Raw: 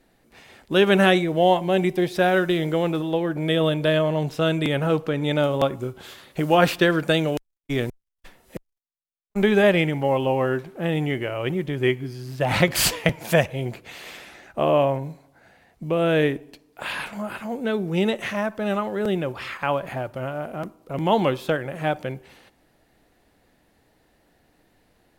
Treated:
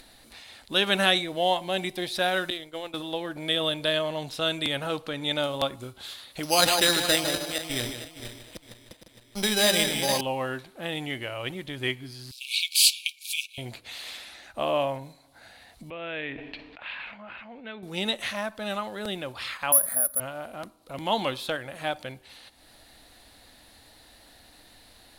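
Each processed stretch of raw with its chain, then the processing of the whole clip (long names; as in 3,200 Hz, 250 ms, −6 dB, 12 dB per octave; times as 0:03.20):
0:02.50–0:02.94: downward expander −17 dBFS + parametric band 180 Hz −12.5 dB 0.2 octaves
0:06.43–0:10.21: feedback delay that plays each chunk backwards 231 ms, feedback 51%, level −7 dB + single-tap delay 152 ms −9 dB + bad sample-rate conversion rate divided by 8×, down none, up hold
0:12.31–0:13.58: mu-law and A-law mismatch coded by A + linear-phase brick-wall high-pass 2,200 Hz
0:15.90–0:17.83: transistor ladder low-pass 2,900 Hz, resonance 45% + level that may fall only so fast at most 35 dB per second
0:19.72–0:20.20: phaser with its sweep stopped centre 560 Hz, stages 8 + bad sample-rate conversion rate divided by 4×, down filtered, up zero stuff
whole clip: graphic EQ with 15 bands 160 Hz −10 dB, 400 Hz −8 dB, 4,000 Hz +12 dB, 10,000 Hz +9 dB; upward compression, threshold −37 dBFS; level −4.5 dB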